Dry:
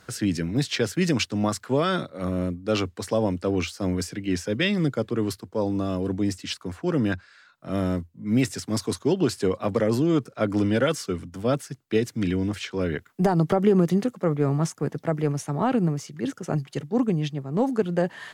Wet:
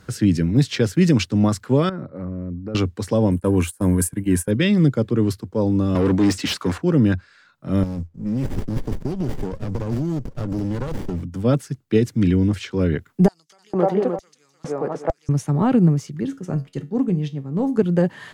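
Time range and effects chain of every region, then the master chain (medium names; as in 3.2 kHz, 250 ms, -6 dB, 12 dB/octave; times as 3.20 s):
1.89–2.75 s: boxcar filter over 13 samples + compression, threshold -32 dBFS
3.31–4.51 s: gate -36 dBFS, range -18 dB + resonant high shelf 7.2 kHz +13.5 dB, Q 3 + small resonant body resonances 990/1600 Hz, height 10 dB, ringing for 25 ms
5.95–6.78 s: overdrive pedal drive 23 dB, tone 4.6 kHz, clips at -15.5 dBFS + high-pass 60 Hz
7.83–11.22 s: high-order bell 6.2 kHz +15.5 dB 1 oct + compression 5:1, threshold -27 dBFS + sliding maximum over 33 samples
13.28–15.29 s: thinning echo 303 ms, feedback 28%, high-pass 160 Hz, level -5 dB + LFO high-pass square 1.1 Hz 660–5900 Hz + RIAA curve playback
16.23–17.77 s: expander -44 dBFS + feedback comb 91 Hz, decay 0.28 s
whole clip: bass shelf 340 Hz +11 dB; band-stop 680 Hz, Q 12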